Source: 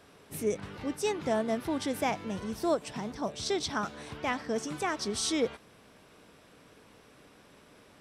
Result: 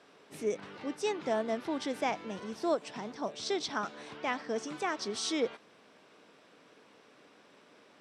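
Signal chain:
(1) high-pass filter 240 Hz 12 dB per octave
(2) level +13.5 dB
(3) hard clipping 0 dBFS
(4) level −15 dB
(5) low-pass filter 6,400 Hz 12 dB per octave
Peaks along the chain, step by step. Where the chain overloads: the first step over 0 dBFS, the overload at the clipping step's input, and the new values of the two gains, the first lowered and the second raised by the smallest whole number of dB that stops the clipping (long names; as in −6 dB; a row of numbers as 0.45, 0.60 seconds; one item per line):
−16.0, −2.5, −2.5, −17.5, −17.5 dBFS
no step passes full scale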